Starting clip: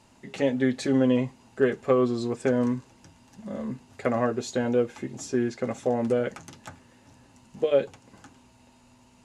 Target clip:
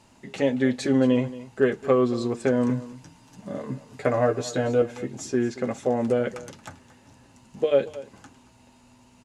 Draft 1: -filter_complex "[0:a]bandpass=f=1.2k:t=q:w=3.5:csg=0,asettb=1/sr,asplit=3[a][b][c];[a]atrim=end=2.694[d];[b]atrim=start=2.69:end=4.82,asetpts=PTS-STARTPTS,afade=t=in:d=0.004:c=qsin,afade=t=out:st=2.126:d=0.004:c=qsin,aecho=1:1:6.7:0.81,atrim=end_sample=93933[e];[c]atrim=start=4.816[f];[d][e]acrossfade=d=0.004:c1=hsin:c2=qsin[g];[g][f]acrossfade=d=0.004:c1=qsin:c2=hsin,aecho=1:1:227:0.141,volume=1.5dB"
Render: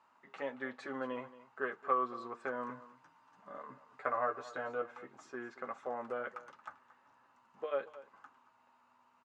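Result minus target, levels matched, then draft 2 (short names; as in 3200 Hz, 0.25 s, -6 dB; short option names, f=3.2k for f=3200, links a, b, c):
1000 Hz band +11.0 dB
-filter_complex "[0:a]asettb=1/sr,asplit=3[a][b][c];[a]atrim=end=2.694[d];[b]atrim=start=2.69:end=4.82,asetpts=PTS-STARTPTS,afade=t=in:d=0.004:c=qsin,afade=t=out:st=2.126:d=0.004:c=qsin,aecho=1:1:6.7:0.81,atrim=end_sample=93933[e];[c]atrim=start=4.816[f];[d][e]acrossfade=d=0.004:c1=hsin:c2=qsin[g];[g][f]acrossfade=d=0.004:c1=qsin:c2=hsin,aecho=1:1:227:0.141,volume=1.5dB"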